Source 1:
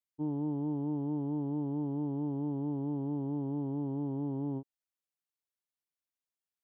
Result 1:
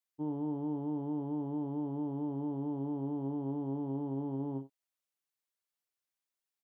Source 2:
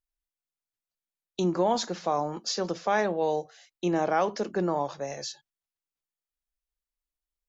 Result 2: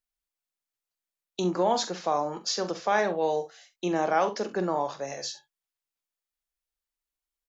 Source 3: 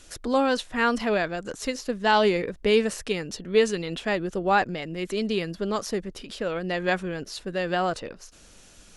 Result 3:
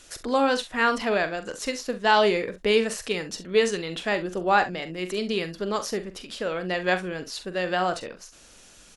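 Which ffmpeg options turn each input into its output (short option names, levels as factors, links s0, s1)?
-filter_complex "[0:a]lowshelf=f=280:g=-7,asplit=2[s0][s1];[s1]aecho=0:1:44|66:0.266|0.141[s2];[s0][s2]amix=inputs=2:normalize=0,volume=1.19"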